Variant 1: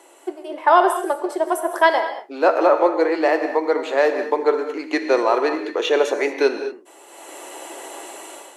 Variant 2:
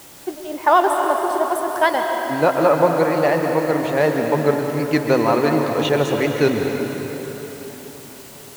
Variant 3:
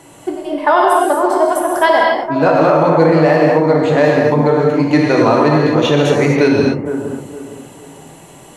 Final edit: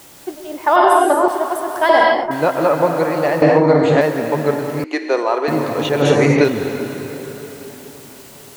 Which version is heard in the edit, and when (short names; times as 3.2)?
2
0.76–1.28 from 3
1.89–2.31 from 3
3.42–4.01 from 3
4.84–5.48 from 1
6.02–6.44 from 3